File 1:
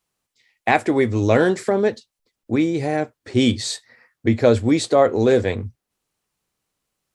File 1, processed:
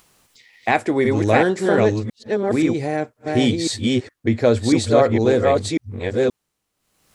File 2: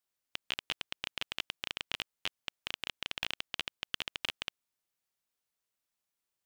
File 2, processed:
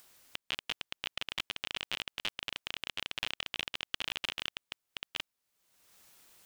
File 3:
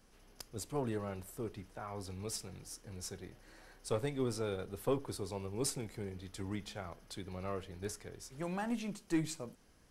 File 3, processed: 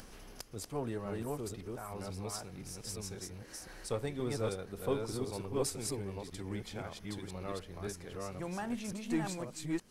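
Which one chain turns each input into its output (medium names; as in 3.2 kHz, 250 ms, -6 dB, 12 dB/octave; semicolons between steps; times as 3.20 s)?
chunks repeated in reverse 525 ms, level -1.5 dB; upward compressor, threshold -39 dBFS; trim -1 dB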